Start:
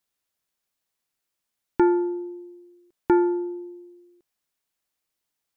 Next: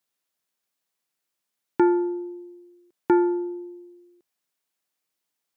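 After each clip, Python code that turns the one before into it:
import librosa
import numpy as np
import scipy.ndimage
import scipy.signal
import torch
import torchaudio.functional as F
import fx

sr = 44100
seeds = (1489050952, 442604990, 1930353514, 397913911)

y = scipy.signal.sosfilt(scipy.signal.butter(2, 140.0, 'highpass', fs=sr, output='sos'), x)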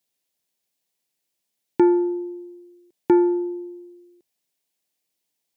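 y = fx.peak_eq(x, sr, hz=1300.0, db=-11.0, octaves=0.86)
y = y * librosa.db_to_amplitude(3.5)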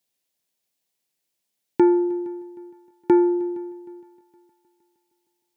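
y = fx.echo_heads(x, sr, ms=155, heads='second and third', feedback_pct=43, wet_db=-24)
y = fx.end_taper(y, sr, db_per_s=150.0)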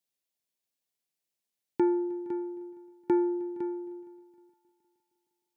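y = x + 10.0 ** (-11.0 / 20.0) * np.pad(x, (int(507 * sr / 1000.0), 0))[:len(x)]
y = y * librosa.db_to_amplitude(-9.0)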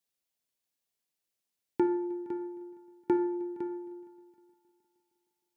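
y = fx.rev_double_slope(x, sr, seeds[0], early_s=0.59, late_s=1.8, knee_db=-18, drr_db=8.5)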